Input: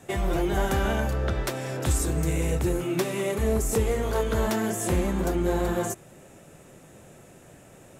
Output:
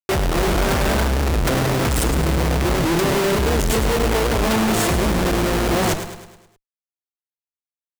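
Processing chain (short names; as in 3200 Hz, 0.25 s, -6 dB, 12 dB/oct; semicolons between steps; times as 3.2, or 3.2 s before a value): Schmitt trigger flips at -32.5 dBFS; on a send: feedback echo 0.104 s, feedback 50%, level -9.5 dB; on the sum: record warp 78 rpm, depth 160 cents; gain +8 dB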